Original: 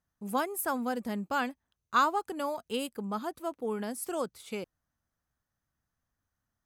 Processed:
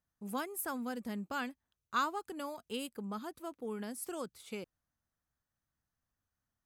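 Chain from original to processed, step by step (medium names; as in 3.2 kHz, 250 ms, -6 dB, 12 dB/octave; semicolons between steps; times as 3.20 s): dynamic bell 720 Hz, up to -6 dB, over -41 dBFS, Q 0.96; trim -4.5 dB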